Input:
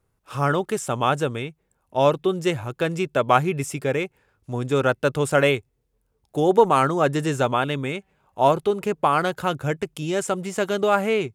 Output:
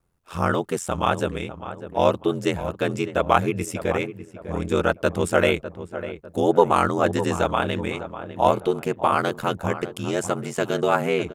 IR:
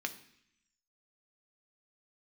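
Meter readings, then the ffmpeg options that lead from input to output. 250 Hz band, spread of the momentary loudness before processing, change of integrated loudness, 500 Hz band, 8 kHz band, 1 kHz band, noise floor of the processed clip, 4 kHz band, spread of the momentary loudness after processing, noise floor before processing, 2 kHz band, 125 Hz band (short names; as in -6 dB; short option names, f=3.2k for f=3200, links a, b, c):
0.0 dB, 9 LU, -1.0 dB, -1.0 dB, -1.0 dB, -1.0 dB, -48 dBFS, -1.0 dB, 12 LU, -71 dBFS, -0.5 dB, -2.0 dB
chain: -filter_complex "[0:a]asplit=2[a][b];[b]adelay=601,lowpass=f=1.6k:p=1,volume=-11.5dB,asplit=2[c][d];[d]adelay=601,lowpass=f=1.6k:p=1,volume=0.41,asplit=2[e][f];[f]adelay=601,lowpass=f=1.6k:p=1,volume=0.41,asplit=2[g][h];[h]adelay=601,lowpass=f=1.6k:p=1,volume=0.41[i];[a][c][e][g][i]amix=inputs=5:normalize=0,aeval=exprs='val(0)*sin(2*PI*43*n/s)':c=same,volume=2dB"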